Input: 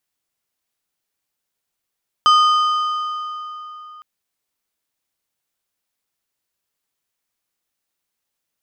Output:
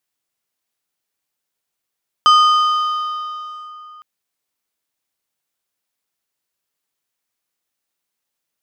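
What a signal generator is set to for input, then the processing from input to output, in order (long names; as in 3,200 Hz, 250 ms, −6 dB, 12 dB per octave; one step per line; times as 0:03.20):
struck metal plate, length 1.76 s, lowest mode 1,230 Hz, decay 3.63 s, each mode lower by 8.5 dB, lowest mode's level −8.5 dB
low-shelf EQ 93 Hz −6.5 dB
in parallel at −10.5 dB: dead-zone distortion −31.5 dBFS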